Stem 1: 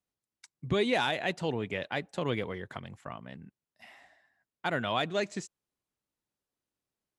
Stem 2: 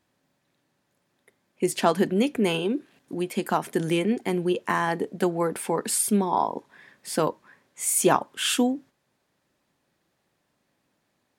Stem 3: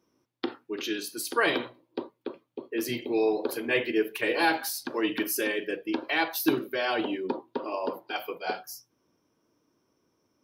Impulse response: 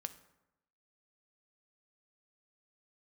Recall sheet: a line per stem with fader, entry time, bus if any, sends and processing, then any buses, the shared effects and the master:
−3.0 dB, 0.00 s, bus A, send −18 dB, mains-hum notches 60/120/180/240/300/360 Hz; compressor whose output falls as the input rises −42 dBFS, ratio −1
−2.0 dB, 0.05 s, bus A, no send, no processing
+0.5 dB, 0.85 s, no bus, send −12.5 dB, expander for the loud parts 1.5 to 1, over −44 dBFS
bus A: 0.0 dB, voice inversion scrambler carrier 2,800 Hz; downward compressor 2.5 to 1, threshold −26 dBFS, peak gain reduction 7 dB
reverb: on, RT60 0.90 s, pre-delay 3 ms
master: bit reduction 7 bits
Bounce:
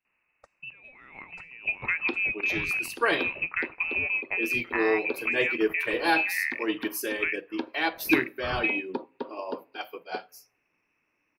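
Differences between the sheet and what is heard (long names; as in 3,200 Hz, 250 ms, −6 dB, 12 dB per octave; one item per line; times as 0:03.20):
stem 3: entry 0.85 s → 1.65 s
master: missing bit reduction 7 bits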